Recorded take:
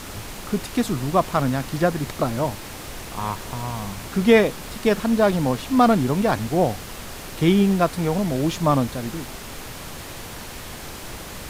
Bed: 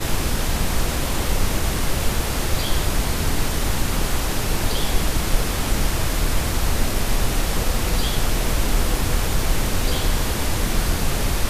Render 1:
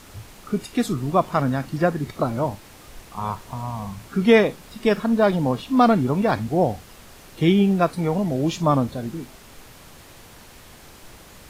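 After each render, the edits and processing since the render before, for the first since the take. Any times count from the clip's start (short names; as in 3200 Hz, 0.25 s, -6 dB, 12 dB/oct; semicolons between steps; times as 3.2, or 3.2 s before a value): noise print and reduce 10 dB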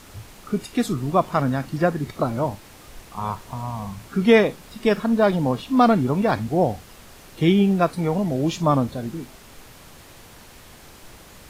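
nothing audible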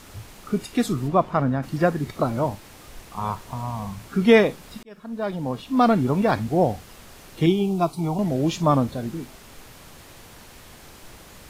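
1.07–1.62 LPF 3100 Hz -> 1200 Hz 6 dB/oct; 4.83–6.09 fade in; 7.46–8.19 fixed phaser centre 340 Hz, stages 8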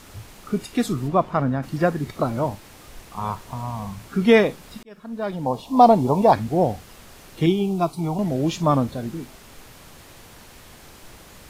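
5.46–6.33 EQ curve 300 Hz 0 dB, 940 Hz +11 dB, 1400 Hz -12 dB, 4500 Hz +2 dB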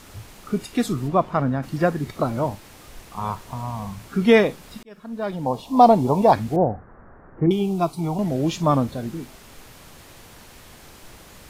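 6.56–7.51 steep low-pass 1700 Hz 48 dB/oct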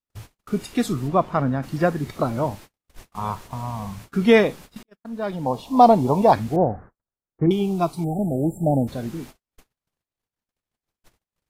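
gate -39 dBFS, range -51 dB; 8.04–8.88 spectral delete 870–7300 Hz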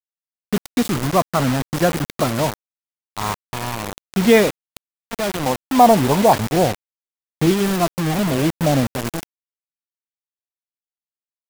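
in parallel at -5.5 dB: soft clip -17 dBFS, distortion -8 dB; on the sum: bit-crush 4-bit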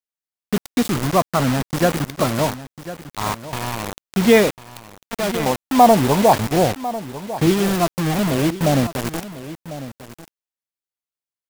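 echo 1.048 s -14.5 dB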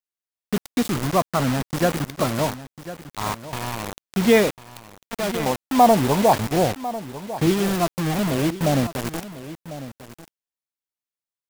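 gain -3 dB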